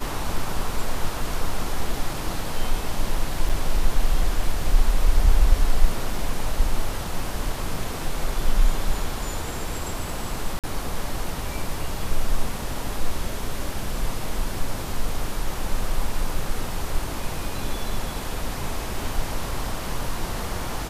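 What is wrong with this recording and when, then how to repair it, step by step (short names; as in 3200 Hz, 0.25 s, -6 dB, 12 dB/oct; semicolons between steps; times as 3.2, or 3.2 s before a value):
3.49–3.5 gap 5.4 ms
10.59–10.64 gap 47 ms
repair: interpolate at 3.49, 5.4 ms; interpolate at 10.59, 47 ms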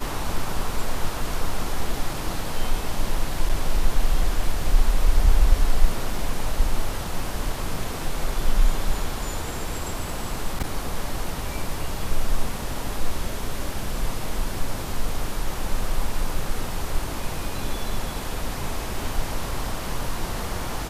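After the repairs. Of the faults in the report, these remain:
none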